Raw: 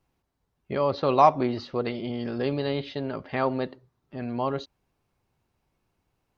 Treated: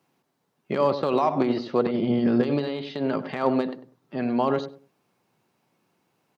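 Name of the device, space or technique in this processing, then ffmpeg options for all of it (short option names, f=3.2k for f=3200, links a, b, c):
de-esser from a sidechain: -filter_complex "[0:a]asplit=2[a][b];[b]highpass=4k,apad=whole_len=281087[c];[a][c]sidechaincompress=threshold=-48dB:ratio=8:attack=0.76:release=58,asettb=1/sr,asplit=3[d][e][f];[d]atrim=end=1.864[g];[e]atrim=start=1.86:end=2.43,asetpts=PTS-STARTPTS,afade=t=in:d=0.004:c=qsin,afade=t=out:st=0.566:d=0.004:c=qsin,aemphasis=mode=reproduction:type=bsi[h];[f]atrim=start=2.426[i];[g][h]acrossfade=d=0.004:c1=hsin:c2=qsin[j];[j][i]acrossfade=d=0.004:c1=qsin:c2=hsin,highpass=f=150:w=0.5412,highpass=f=150:w=1.3066,asplit=2[k][l];[l]adelay=97,lowpass=f=910:p=1,volume=-10dB,asplit=2[m][n];[n]adelay=97,lowpass=f=910:p=1,volume=0.25,asplit=2[o][p];[p]adelay=97,lowpass=f=910:p=1,volume=0.25[q];[k][m][o][q]amix=inputs=4:normalize=0,volume=7dB"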